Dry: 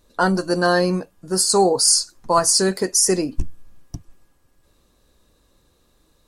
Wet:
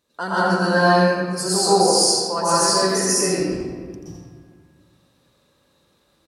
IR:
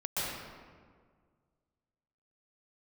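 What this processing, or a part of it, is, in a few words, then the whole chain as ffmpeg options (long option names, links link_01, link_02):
PA in a hall: -filter_complex "[0:a]highpass=120,equalizer=frequency=2700:width_type=o:width=2.2:gain=5,aecho=1:1:84:0.473[link_01];[1:a]atrim=start_sample=2205[link_02];[link_01][link_02]afir=irnorm=-1:irlink=0,volume=-8dB"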